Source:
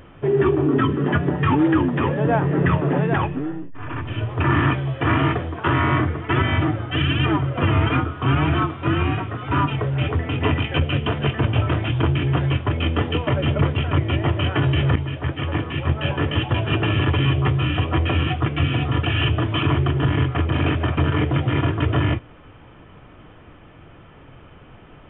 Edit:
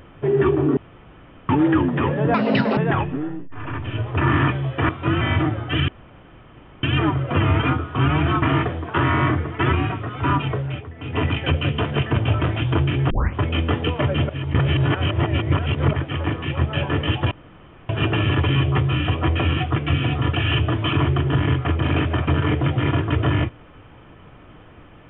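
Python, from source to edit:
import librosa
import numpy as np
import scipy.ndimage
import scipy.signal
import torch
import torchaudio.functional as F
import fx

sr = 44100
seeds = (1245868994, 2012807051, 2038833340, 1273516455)

y = fx.edit(x, sr, fx.room_tone_fill(start_s=0.77, length_s=0.72),
    fx.speed_span(start_s=2.34, length_s=0.66, speed=1.53),
    fx.swap(start_s=5.12, length_s=1.31, other_s=8.69, other_length_s=0.32),
    fx.insert_room_tone(at_s=7.1, length_s=0.95),
    fx.fade_down_up(start_s=9.79, length_s=0.78, db=-14.5, fade_s=0.34),
    fx.tape_start(start_s=12.38, length_s=0.25),
    fx.reverse_span(start_s=13.57, length_s=1.64),
    fx.insert_room_tone(at_s=16.59, length_s=0.58), tone=tone)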